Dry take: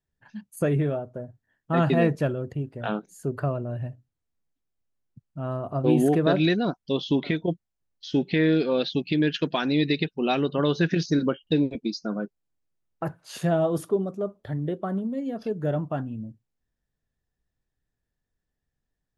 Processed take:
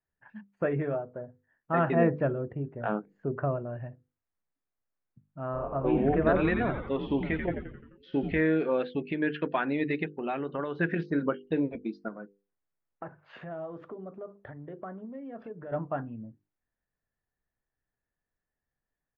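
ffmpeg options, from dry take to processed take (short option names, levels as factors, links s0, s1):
-filter_complex "[0:a]asettb=1/sr,asplit=3[s0][s1][s2];[s0]atrim=end=1.954[s3];[s1]atrim=start=1.95:end=3.57,asetpts=PTS-STARTPTS,afade=t=in:d=0.004:c=qsin,afade=t=out:st=1.616:d=0.004:c=qsin,tiltshelf=f=820:g=4[s4];[s2]atrim=start=3.566[s5];[s3][s4]acrossfade=d=0.004:c1=hsin:c2=qsin[s6];[s6][s5]acrossfade=d=0.004:c1=qsin:c2=hsin,asplit=3[s7][s8][s9];[s7]afade=t=out:st=5.53:d=0.02[s10];[s8]asplit=8[s11][s12][s13][s14][s15][s16][s17][s18];[s12]adelay=87,afreqshift=-100,volume=0.501[s19];[s13]adelay=174,afreqshift=-200,volume=0.282[s20];[s14]adelay=261,afreqshift=-300,volume=0.157[s21];[s15]adelay=348,afreqshift=-400,volume=0.0881[s22];[s16]adelay=435,afreqshift=-500,volume=0.0495[s23];[s17]adelay=522,afreqshift=-600,volume=0.0275[s24];[s18]adelay=609,afreqshift=-700,volume=0.0155[s25];[s11][s19][s20][s21][s22][s23][s24][s25]amix=inputs=8:normalize=0,afade=t=in:st=5.53:d=0.02,afade=t=out:st=8.4:d=0.02[s26];[s9]afade=t=in:st=8.4:d=0.02[s27];[s10][s26][s27]amix=inputs=3:normalize=0,asettb=1/sr,asplit=3[s28][s29][s30];[s28]atrim=end=10.154[s31];[s29]atrim=start=10.15:end=10.77,asetpts=PTS-STARTPTS,afade=t=in:d=0.004:c=qsin,afade=t=out:st=0.616:d=0.004:c=qsin,acompressor=threshold=0.0631:ratio=6:attack=3.2:release=140:knee=1:detection=peak[s32];[s30]atrim=start=10.766[s33];[s31][s32]acrossfade=d=0.004:c1=hsin:c2=qsin[s34];[s34][s33]acrossfade=d=0.004:c1=qsin:c2=hsin,asettb=1/sr,asplit=3[s35][s36][s37];[s35]atrim=end=12.084[s38];[s36]atrim=start=12.08:end=15.72,asetpts=PTS-STARTPTS,afade=t=in:d=0.004:c=qsin,afade=t=out:st=3.636:d=0.004:c=qsin,acompressor=threshold=0.0224:ratio=6:attack=3.2:release=140:knee=1:detection=peak[s39];[s37]atrim=start=15.716[s40];[s38][s39]acrossfade=d=0.004:c1=hsin:c2=qsin[s41];[s41][s40]acrossfade=d=0.004:c1=qsin:c2=hsin,lowpass=f=2100:w=0.5412,lowpass=f=2100:w=1.3066,lowshelf=f=380:g=-9.5,bandreject=f=50:t=h:w=6,bandreject=f=100:t=h:w=6,bandreject=f=150:t=h:w=6,bandreject=f=200:t=h:w=6,bandreject=f=250:t=h:w=6,bandreject=f=300:t=h:w=6,bandreject=f=350:t=h:w=6,bandreject=f=400:t=h:w=6,bandreject=f=450:t=h:w=6,bandreject=f=500:t=h:w=6,volume=1.12"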